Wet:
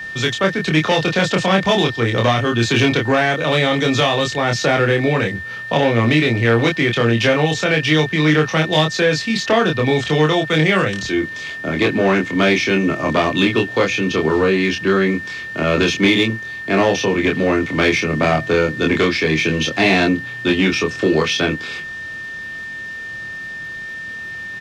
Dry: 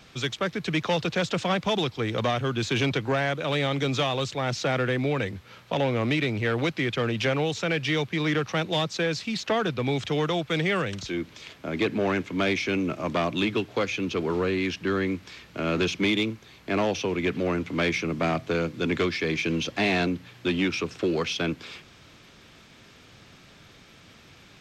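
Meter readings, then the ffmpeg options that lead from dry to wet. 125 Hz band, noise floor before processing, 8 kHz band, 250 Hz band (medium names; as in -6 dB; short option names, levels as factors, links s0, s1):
+9.5 dB, -52 dBFS, +10.0 dB, +9.5 dB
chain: -filter_complex "[0:a]asplit=2[s0][s1];[s1]adelay=26,volume=0.708[s2];[s0][s2]amix=inputs=2:normalize=0,aeval=exprs='val(0)+0.0178*sin(2*PI*1800*n/s)':c=same,volume=2.51"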